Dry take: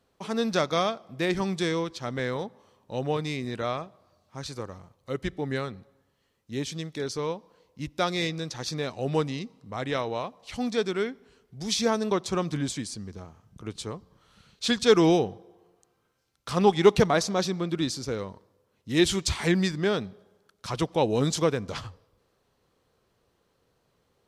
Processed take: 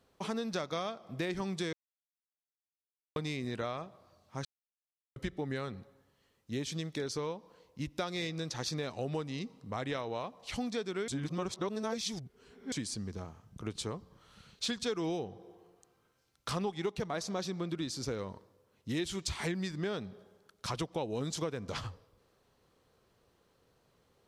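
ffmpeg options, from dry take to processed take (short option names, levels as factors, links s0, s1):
-filter_complex "[0:a]asplit=7[s0][s1][s2][s3][s4][s5][s6];[s0]atrim=end=1.73,asetpts=PTS-STARTPTS,afade=t=out:st=1.726:d=0.004:c=hsin[s7];[s1]atrim=start=1.73:end=3.16,asetpts=PTS-STARTPTS,volume=0[s8];[s2]atrim=start=3.16:end=4.45,asetpts=PTS-STARTPTS,afade=t=in:d=0.004:c=hsin,afade=t=out:st=1.286:d=0.004:c=hsin[s9];[s3]atrim=start=4.45:end=5.16,asetpts=PTS-STARTPTS,volume=0[s10];[s4]atrim=start=5.16:end=11.082,asetpts=PTS-STARTPTS,afade=t=in:d=0.004:c=hsin[s11];[s5]atrim=start=11.078:end=12.722,asetpts=PTS-STARTPTS,areverse[s12];[s6]atrim=start=12.718[s13];[s7][s8][s9][s10][s11]concat=n=5:v=0:a=1[s14];[s14][s12]acrossfade=d=0.004:c1=hsin:c2=hsin[s15];[s15][s13]acrossfade=d=0.004:c1=hsin:c2=hsin,acompressor=threshold=0.0224:ratio=6"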